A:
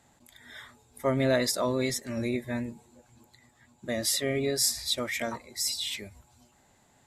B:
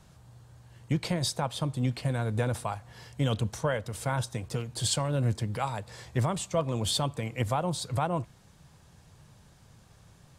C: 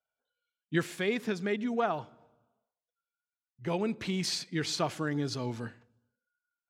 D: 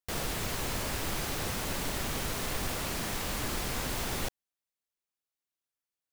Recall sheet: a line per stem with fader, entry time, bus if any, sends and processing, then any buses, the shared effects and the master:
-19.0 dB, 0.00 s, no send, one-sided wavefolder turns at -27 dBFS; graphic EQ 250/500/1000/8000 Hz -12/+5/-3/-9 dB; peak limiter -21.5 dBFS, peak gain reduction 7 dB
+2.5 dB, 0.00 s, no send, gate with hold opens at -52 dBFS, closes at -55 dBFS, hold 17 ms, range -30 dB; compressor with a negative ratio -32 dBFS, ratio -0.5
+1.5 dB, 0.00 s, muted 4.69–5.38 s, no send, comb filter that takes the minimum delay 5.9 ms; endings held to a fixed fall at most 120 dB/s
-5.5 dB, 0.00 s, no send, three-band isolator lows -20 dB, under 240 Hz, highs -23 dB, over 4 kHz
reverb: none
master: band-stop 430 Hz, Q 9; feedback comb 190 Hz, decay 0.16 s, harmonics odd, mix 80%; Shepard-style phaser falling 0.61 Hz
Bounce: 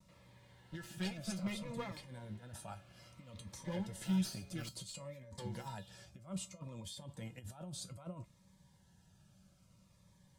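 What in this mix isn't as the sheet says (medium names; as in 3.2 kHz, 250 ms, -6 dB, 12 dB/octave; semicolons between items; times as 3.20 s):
stem B +2.5 dB -> -4.0 dB; stem D -5.5 dB -> -16.5 dB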